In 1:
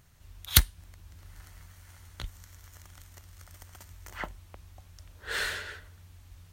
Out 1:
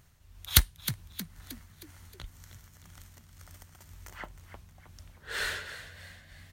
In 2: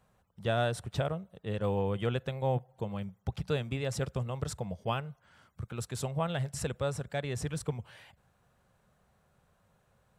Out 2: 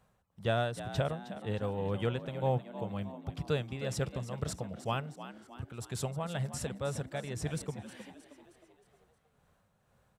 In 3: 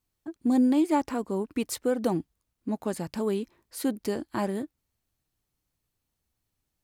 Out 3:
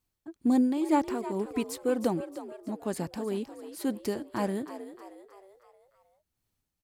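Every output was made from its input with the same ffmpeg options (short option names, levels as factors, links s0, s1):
-filter_complex "[0:a]tremolo=f=2:d=0.5,asplit=6[s0][s1][s2][s3][s4][s5];[s1]adelay=313,afreqshift=63,volume=0.237[s6];[s2]adelay=626,afreqshift=126,volume=0.116[s7];[s3]adelay=939,afreqshift=189,volume=0.0569[s8];[s4]adelay=1252,afreqshift=252,volume=0.0279[s9];[s5]adelay=1565,afreqshift=315,volume=0.0136[s10];[s0][s6][s7][s8][s9][s10]amix=inputs=6:normalize=0"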